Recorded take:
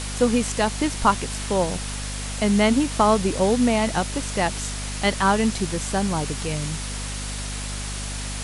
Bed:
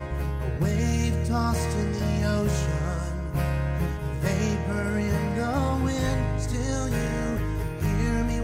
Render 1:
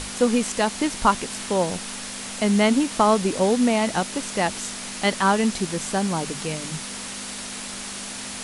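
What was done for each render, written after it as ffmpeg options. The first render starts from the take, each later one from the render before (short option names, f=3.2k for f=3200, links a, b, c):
-af "bandreject=f=50:t=h:w=6,bandreject=f=100:t=h:w=6,bandreject=f=150:t=h:w=6"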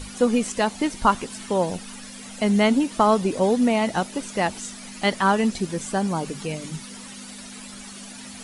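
-af "afftdn=nr=12:nf=-34"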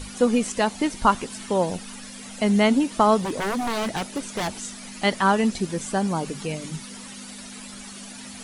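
-filter_complex "[0:a]asettb=1/sr,asplit=3[a][b][c];[a]atrim=end=3.184[d];[b]atrim=start=3.18:end=4.6,asetpts=PTS-STARTPTS,afade=t=in:d=0.004:c=qsin,afade=t=out:st=1.416:d=0.004:c=qsin,aeval=exprs='0.0944*(abs(mod(val(0)/0.0944+3,4)-2)-1)':c=same[e];[c]atrim=start=4.596[f];[d][e]acrossfade=d=0.004:c1=hsin:c2=qsin[g];[g][f]acrossfade=d=0.004:c1=qsin:c2=hsin"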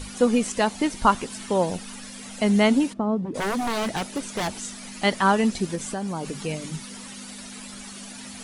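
-filter_complex "[0:a]asplit=3[a][b][c];[a]afade=t=out:st=2.92:d=0.02[d];[b]bandpass=f=180:t=q:w=0.91,afade=t=in:st=2.92:d=0.02,afade=t=out:st=3.34:d=0.02[e];[c]afade=t=in:st=3.34:d=0.02[f];[d][e][f]amix=inputs=3:normalize=0,asettb=1/sr,asplit=3[g][h][i];[g]atrim=end=5.754[j];[h]atrim=start=5.75:end=6.43,asetpts=PTS-STARTPTS,afade=t=in:d=0.004:c=qsin,afade=t=out:st=0.676:d=0.004:c=qsin,acompressor=threshold=-25dB:ratio=6:attack=3.2:release=140:knee=1:detection=peak[k];[i]atrim=start=6.426[l];[j][k]acrossfade=d=0.004:c1=hsin:c2=qsin[m];[m][l]acrossfade=d=0.004:c1=qsin:c2=hsin"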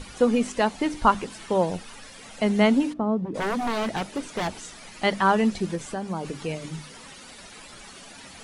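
-af "highshelf=f=5.6k:g=-10.5,bandreject=f=50:t=h:w=6,bandreject=f=100:t=h:w=6,bandreject=f=150:t=h:w=6,bandreject=f=200:t=h:w=6,bandreject=f=250:t=h:w=6,bandreject=f=300:t=h:w=6"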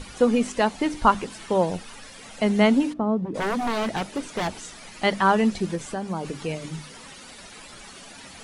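-af "volume=1dB"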